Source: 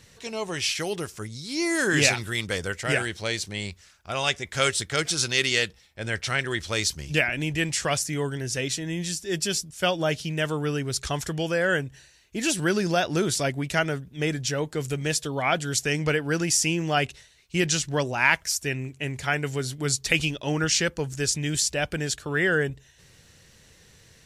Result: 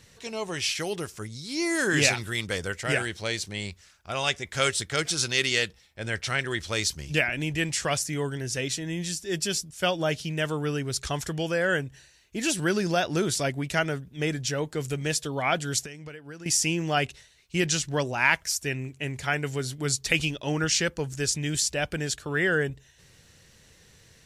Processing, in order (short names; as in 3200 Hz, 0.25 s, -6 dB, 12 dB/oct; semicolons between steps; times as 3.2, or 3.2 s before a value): 15.8–16.46 compressor 12:1, threshold -37 dBFS, peak gain reduction 18 dB; gain -1.5 dB